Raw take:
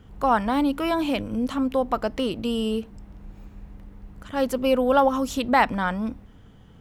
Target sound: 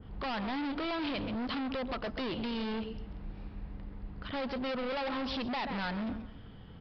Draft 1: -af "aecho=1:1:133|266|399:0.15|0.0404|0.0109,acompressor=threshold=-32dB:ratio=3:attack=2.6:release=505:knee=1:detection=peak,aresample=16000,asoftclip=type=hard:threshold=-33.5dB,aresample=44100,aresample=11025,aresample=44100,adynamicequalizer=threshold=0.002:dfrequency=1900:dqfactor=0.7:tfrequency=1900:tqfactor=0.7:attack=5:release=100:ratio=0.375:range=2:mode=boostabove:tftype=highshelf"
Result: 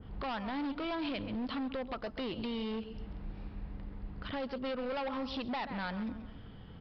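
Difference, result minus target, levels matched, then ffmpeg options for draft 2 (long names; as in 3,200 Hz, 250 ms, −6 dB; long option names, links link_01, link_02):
downward compressor: peak gain reduction +7.5 dB
-af "aecho=1:1:133|266|399:0.15|0.0404|0.0109,acompressor=threshold=-21dB:ratio=3:attack=2.6:release=505:knee=1:detection=peak,aresample=16000,asoftclip=type=hard:threshold=-33.5dB,aresample=44100,aresample=11025,aresample=44100,adynamicequalizer=threshold=0.002:dfrequency=1900:dqfactor=0.7:tfrequency=1900:tqfactor=0.7:attack=5:release=100:ratio=0.375:range=2:mode=boostabove:tftype=highshelf"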